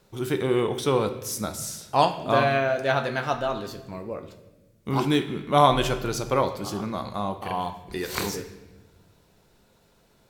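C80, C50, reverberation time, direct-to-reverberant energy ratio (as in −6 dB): 13.0 dB, 10.5 dB, 1.1 s, 8.0 dB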